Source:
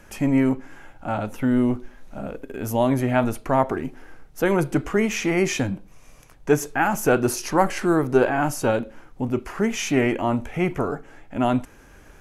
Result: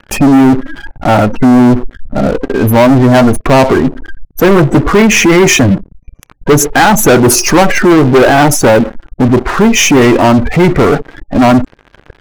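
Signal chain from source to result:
gate on every frequency bin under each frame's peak −20 dB strong
leveller curve on the samples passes 5
level +4 dB

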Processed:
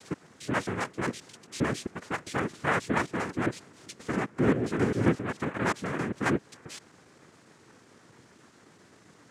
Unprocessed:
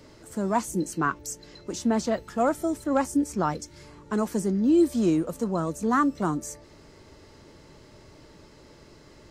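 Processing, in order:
slices reordered back to front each 133 ms, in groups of 3
cochlear-implant simulation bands 3
level −4 dB

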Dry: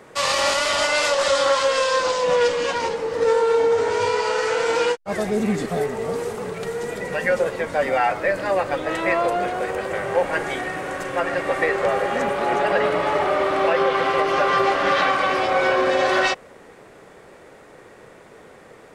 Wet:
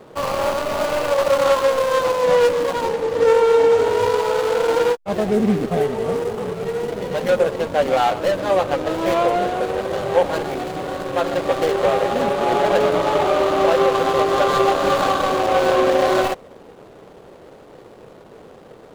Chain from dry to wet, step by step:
running median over 25 samples
level +4.5 dB

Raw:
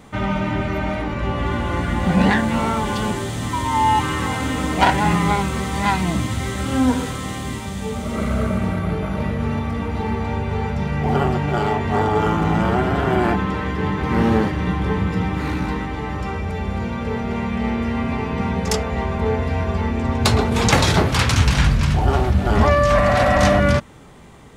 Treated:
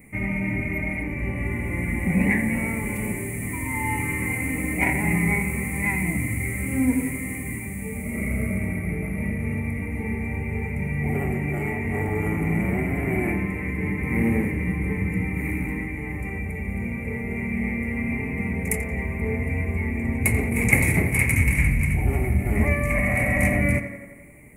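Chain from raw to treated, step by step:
drawn EQ curve 290 Hz 0 dB, 1,500 Hz −17 dB, 2,200 Hz +14 dB, 3,300 Hz −28 dB, 5,300 Hz −22 dB, 10,000 Hz +13 dB
on a send: tape delay 86 ms, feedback 69%, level −9.5 dB, low-pass 3,600 Hz
on the sum: level −4.5 dB

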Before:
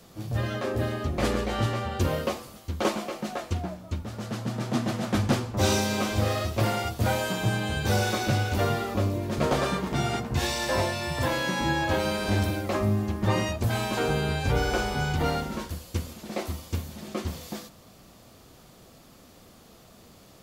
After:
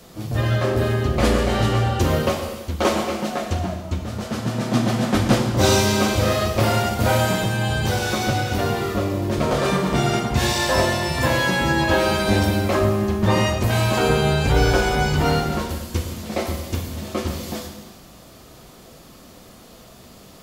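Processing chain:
0:07.35–0:09.65: downward compressor 2 to 1, threshold −27 dBFS, peak gain reduction 4.5 dB
reverb whose tail is shaped and stops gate 440 ms falling, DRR 3.5 dB
level +6 dB

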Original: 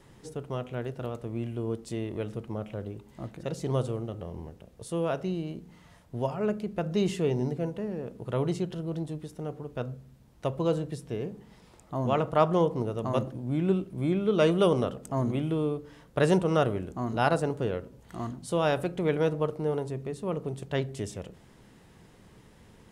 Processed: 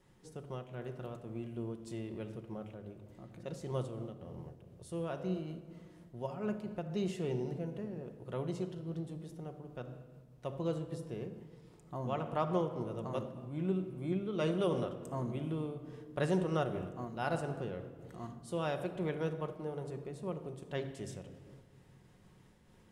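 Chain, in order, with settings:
0:16.73–0:17.38: floating-point word with a short mantissa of 6 bits
rectangular room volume 2,700 cubic metres, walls mixed, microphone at 0.97 metres
amplitude modulation by smooth noise, depth 50%
level −8 dB

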